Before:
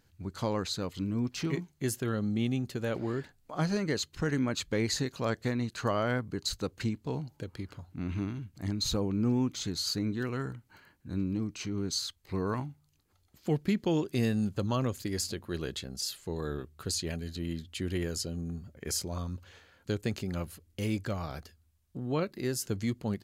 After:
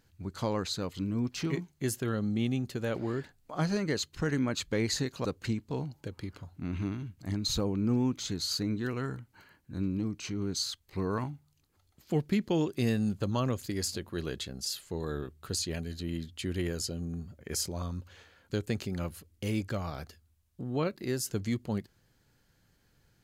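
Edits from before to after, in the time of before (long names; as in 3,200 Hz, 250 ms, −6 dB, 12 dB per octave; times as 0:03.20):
0:05.25–0:06.61: remove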